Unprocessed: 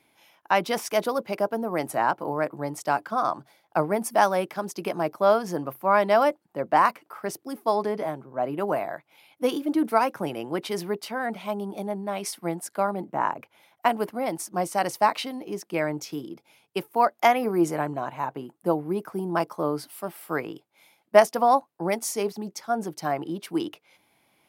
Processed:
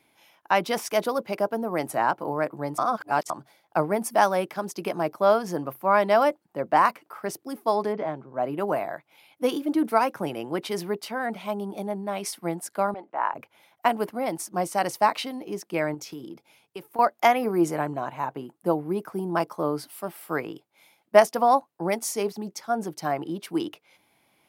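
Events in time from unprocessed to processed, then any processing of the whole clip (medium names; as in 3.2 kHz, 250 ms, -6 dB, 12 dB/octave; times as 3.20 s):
2.78–3.30 s: reverse
7.92–8.34 s: low-pass 2.7 kHz -> 6.6 kHz
12.94–13.34 s: band-pass 610–3300 Hz
15.94–16.99 s: compression 4:1, threshold -34 dBFS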